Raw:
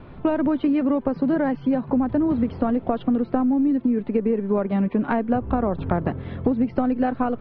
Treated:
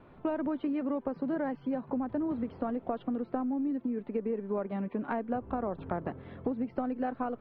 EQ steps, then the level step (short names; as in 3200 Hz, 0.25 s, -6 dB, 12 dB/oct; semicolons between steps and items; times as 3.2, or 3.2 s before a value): low shelf 190 Hz -11 dB; high shelf 2900 Hz -8.5 dB; -8.0 dB